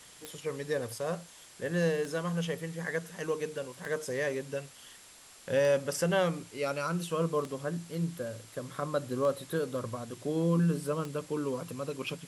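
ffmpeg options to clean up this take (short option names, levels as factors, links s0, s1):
-af "adeclick=t=4,bandreject=f=7500:w=30,afftdn=nr=23:nf=-53"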